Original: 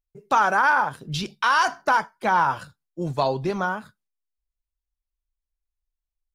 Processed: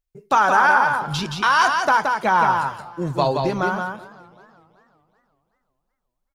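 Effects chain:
single-tap delay 173 ms −4.5 dB
feedback echo with a swinging delay time 377 ms, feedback 41%, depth 134 cents, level −21 dB
level +2.5 dB

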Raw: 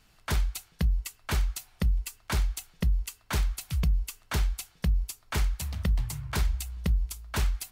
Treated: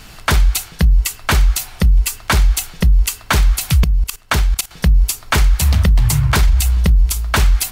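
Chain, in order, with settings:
0:03.84–0:04.71: output level in coarse steps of 18 dB
boost into a limiter +29 dB
level −5 dB

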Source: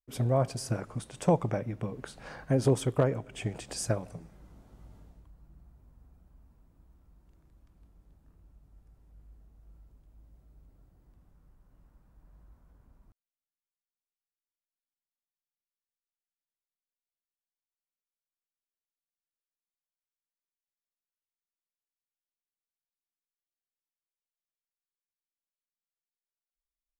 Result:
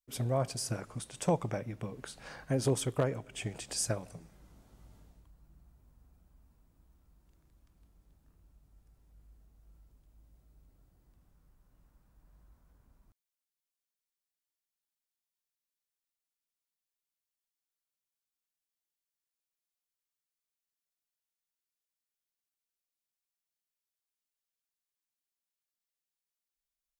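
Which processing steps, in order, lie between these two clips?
high-shelf EQ 2,200 Hz +8.5 dB
level −5 dB

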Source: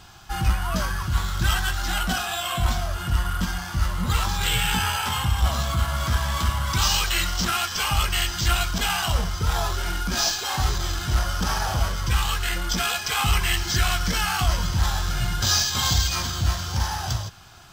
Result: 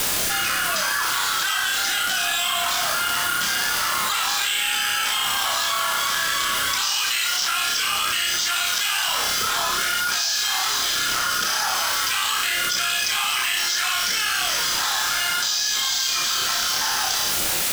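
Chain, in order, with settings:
high-pass filter 1,100 Hz 12 dB per octave
in parallel at −1 dB: brickwall limiter −16.5 dBFS, peak gain reduction 7 dB
on the sum: bit-depth reduction 6 bits, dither triangular
rotating-speaker cabinet horn 0.65 Hz, later 6.3 Hz, at 0:15.69
on a send: flutter between parallel walls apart 5.4 metres, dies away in 0.38 s
on the sum: envelope flattener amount 100%
level −5.5 dB

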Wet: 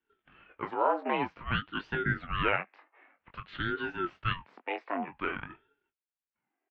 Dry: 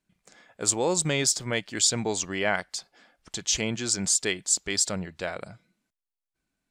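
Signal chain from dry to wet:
double-tracking delay 21 ms −7 dB
single-sideband voice off tune +290 Hz 170–2,100 Hz
ring modulator whose carrier an LFO sweeps 540 Hz, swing 70%, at 0.52 Hz
level +1 dB

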